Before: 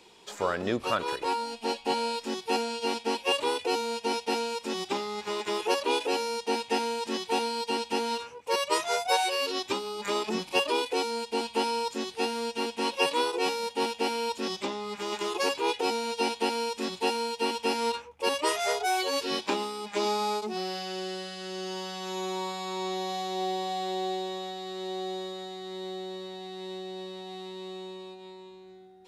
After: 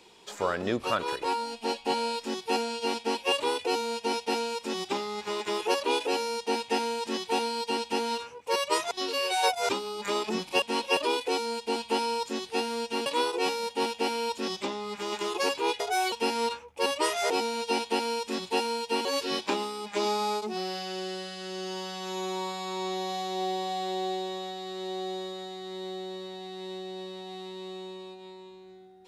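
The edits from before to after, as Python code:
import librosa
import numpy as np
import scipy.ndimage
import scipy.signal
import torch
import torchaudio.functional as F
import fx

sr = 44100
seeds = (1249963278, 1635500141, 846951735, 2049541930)

y = fx.edit(x, sr, fx.reverse_span(start_s=8.91, length_s=0.78),
    fx.move(start_s=12.71, length_s=0.35, to_s=10.62),
    fx.swap(start_s=15.8, length_s=1.75, other_s=18.73, other_length_s=0.32), tone=tone)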